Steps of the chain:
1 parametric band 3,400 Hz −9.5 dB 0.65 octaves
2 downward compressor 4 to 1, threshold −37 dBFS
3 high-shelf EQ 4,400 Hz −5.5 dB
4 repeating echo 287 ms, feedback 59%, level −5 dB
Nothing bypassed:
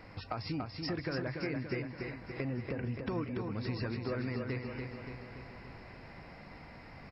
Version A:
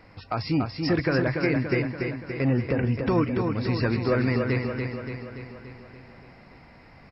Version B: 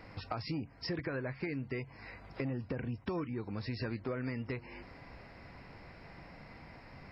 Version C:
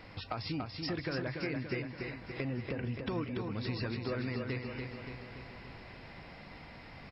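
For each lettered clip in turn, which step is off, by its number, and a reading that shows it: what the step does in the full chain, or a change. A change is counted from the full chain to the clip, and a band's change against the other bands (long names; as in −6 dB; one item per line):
2, average gain reduction 6.0 dB
4, echo-to-direct ratio −3.0 dB to none audible
1, 4 kHz band +3.0 dB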